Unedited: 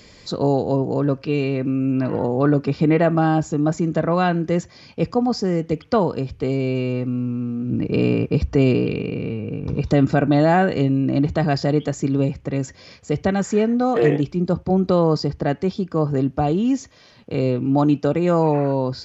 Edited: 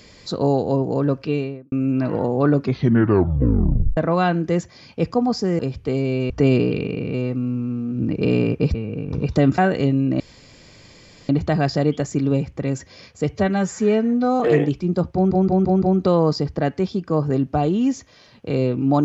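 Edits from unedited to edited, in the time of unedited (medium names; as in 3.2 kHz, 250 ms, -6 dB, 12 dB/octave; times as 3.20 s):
1.25–1.72 s: studio fade out
2.60 s: tape stop 1.37 s
5.59–6.14 s: delete
8.45–9.29 s: move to 6.85 s
10.13–10.55 s: delete
11.17 s: insert room tone 1.09 s
13.20–13.92 s: stretch 1.5×
14.66 s: stutter 0.17 s, 5 plays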